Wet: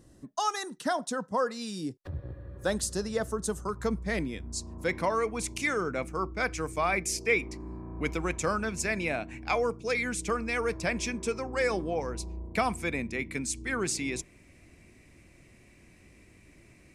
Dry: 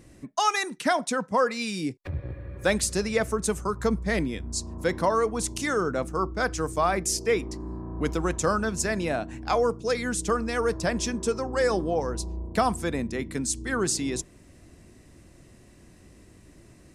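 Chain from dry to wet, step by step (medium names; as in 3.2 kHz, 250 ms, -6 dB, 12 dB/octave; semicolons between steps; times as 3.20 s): peaking EQ 2.3 kHz -14 dB 0.37 oct, from 3.69 s +2.5 dB, from 4.88 s +15 dB; trim -5 dB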